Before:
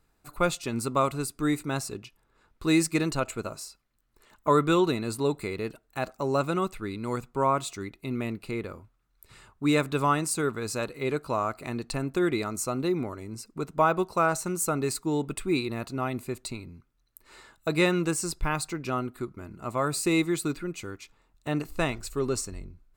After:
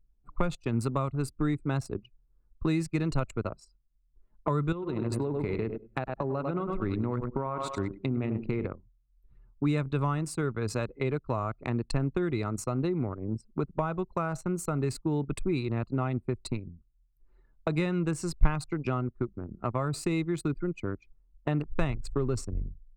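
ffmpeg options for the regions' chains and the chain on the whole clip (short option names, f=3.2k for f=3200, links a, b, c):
-filter_complex "[0:a]asettb=1/sr,asplit=3[a][b][c];[a]atrim=end=4.724[d];[b]atrim=start=4.72:end=8.67,asetpts=PTS-STARTPTS,afade=t=in:d=0.004:c=qsin,afade=t=out:st=3.946:d=0.004:c=qsin,aecho=1:1:98|196|294|392|490:0.376|0.162|0.0695|0.0299|0.0128,atrim=end_sample=174195,acompressor=threshold=-28dB:ratio=20:attack=3.2:release=140:knee=1:detection=peak[e];[c]atrim=start=8.666[f];[d][e]acrossfade=d=0.004:c1=hsin:c2=qsin[g];[g][f]acrossfade=d=0.004:c1=qsin:c2=hsin,anlmdn=6.31,acrossover=split=130[h][i];[i]acompressor=threshold=-37dB:ratio=10[j];[h][j]amix=inputs=2:normalize=0,aemphasis=mode=reproduction:type=50kf,volume=9dB"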